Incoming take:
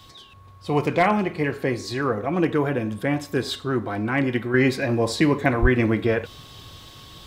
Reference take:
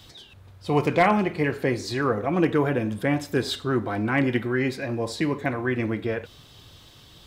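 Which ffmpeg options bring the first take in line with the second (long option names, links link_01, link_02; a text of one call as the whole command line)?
ffmpeg -i in.wav -filter_complex "[0:a]bandreject=frequency=1100:width=30,asplit=3[link_01][link_02][link_03];[link_01]afade=type=out:start_time=5.61:duration=0.02[link_04];[link_02]highpass=frequency=140:width=0.5412,highpass=frequency=140:width=1.3066,afade=type=in:start_time=5.61:duration=0.02,afade=type=out:start_time=5.73:duration=0.02[link_05];[link_03]afade=type=in:start_time=5.73:duration=0.02[link_06];[link_04][link_05][link_06]amix=inputs=3:normalize=0,asetnsamples=nb_out_samples=441:pad=0,asendcmd='4.54 volume volume -6dB',volume=0dB" out.wav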